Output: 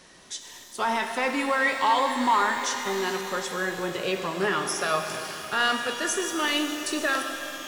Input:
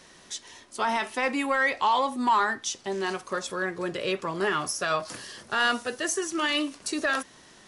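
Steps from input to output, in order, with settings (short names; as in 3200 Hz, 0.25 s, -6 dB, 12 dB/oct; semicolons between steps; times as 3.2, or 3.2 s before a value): shimmer reverb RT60 3.6 s, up +12 st, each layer -8 dB, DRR 5 dB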